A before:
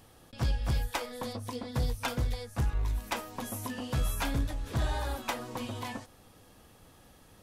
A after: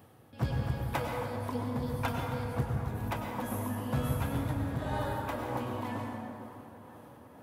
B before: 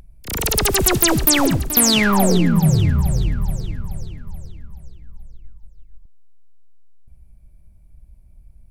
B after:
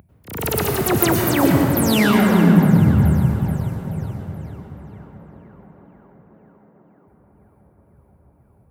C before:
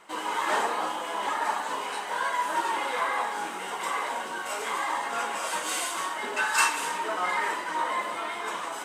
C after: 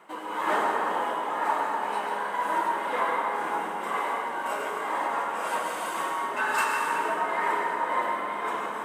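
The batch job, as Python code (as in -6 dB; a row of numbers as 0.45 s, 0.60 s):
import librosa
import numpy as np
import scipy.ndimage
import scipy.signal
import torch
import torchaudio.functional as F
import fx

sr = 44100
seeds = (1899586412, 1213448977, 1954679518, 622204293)

p1 = scipy.signal.sosfilt(scipy.signal.butter(4, 88.0, 'highpass', fs=sr, output='sos'), x)
p2 = fx.peak_eq(p1, sr, hz=5900.0, db=-12.5, octaves=2.2)
p3 = 10.0 ** (-15.5 / 20.0) * np.tanh(p2 / 10.0 ** (-15.5 / 20.0))
p4 = p2 + (p3 * 10.0 ** (-9.5 / 20.0))
p5 = p4 * (1.0 - 0.55 / 2.0 + 0.55 / 2.0 * np.cos(2.0 * np.pi * 2.0 * (np.arange(len(p4)) / sr)))
p6 = p5 + fx.echo_tape(p5, sr, ms=491, feedback_pct=83, wet_db=-18.0, lp_hz=2900.0, drive_db=8.0, wow_cents=16, dry=0)
y = fx.rev_plate(p6, sr, seeds[0], rt60_s=2.6, hf_ratio=0.5, predelay_ms=85, drr_db=0.5)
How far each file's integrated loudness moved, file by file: 0.0 LU, -0.5 LU, +0.5 LU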